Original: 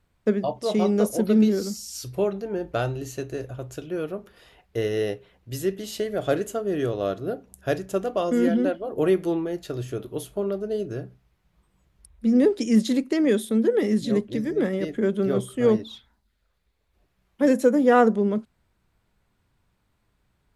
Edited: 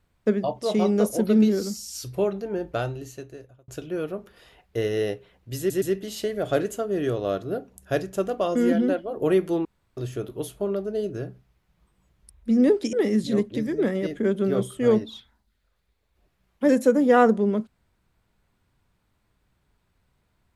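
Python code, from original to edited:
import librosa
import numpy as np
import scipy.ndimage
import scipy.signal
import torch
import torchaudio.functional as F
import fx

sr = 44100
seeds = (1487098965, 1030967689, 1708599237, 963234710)

y = fx.edit(x, sr, fx.fade_out_span(start_s=2.6, length_s=1.08),
    fx.stutter(start_s=5.58, slice_s=0.12, count=3),
    fx.room_tone_fill(start_s=9.41, length_s=0.32),
    fx.cut(start_s=12.69, length_s=1.02), tone=tone)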